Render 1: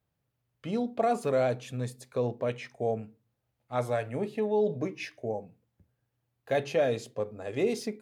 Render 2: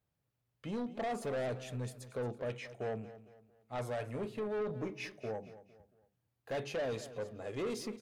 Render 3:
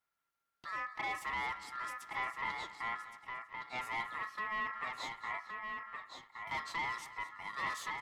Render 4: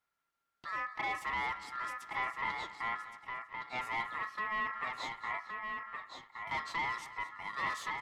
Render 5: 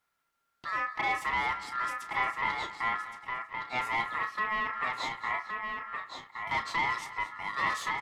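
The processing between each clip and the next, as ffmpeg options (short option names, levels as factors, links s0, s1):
-af "asoftclip=type=tanh:threshold=0.0376,aecho=1:1:227|454|681:0.178|0.0676|0.0257,volume=0.631"
-filter_complex "[0:a]asplit=2[s0][s1];[s1]adelay=1117,lowpass=f=4700:p=1,volume=0.562,asplit=2[s2][s3];[s3]adelay=1117,lowpass=f=4700:p=1,volume=0.16,asplit=2[s4][s5];[s5]adelay=1117,lowpass=f=4700:p=1,volume=0.16[s6];[s0][s2][s4][s6]amix=inputs=4:normalize=0,aeval=exprs='val(0)*sin(2*PI*1500*n/s)':c=same,bandreject=f=1600:w=6.1,volume=1.19"
-af "highshelf=f=6800:g=-7,volume=1.33"
-filter_complex "[0:a]asplit=2[s0][s1];[s1]adelay=32,volume=0.299[s2];[s0][s2]amix=inputs=2:normalize=0,volume=1.88"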